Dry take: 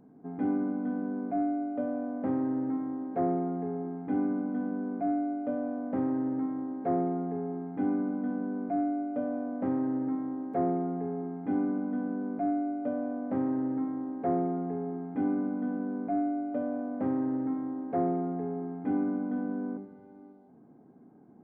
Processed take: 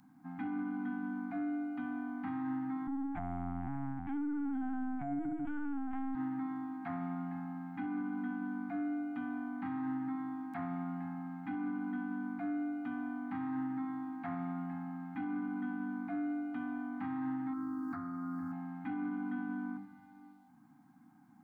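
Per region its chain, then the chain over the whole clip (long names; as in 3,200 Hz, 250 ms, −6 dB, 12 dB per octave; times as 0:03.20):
0:02.87–0:06.15: parametric band 450 Hz +7 dB 1.9 octaves + mains-hum notches 60/120/180/240/300/360/420/480/540 Hz + linear-prediction vocoder at 8 kHz pitch kept
0:17.53–0:18.52: drawn EQ curve 100 Hz 0 dB, 160 Hz −12 dB, 310 Hz −2 dB, 600 Hz −16 dB, 870 Hz −14 dB, 1,300 Hz +1 dB, 2,200 Hz −20 dB, 3,200 Hz −29 dB, 4,600 Hz −1 dB + envelope flattener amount 100%
whole clip: Chebyshev band-stop filter 300–760 Hz, order 4; tilt shelving filter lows −8.5 dB, about 1,200 Hz; brickwall limiter −33.5 dBFS; level +3 dB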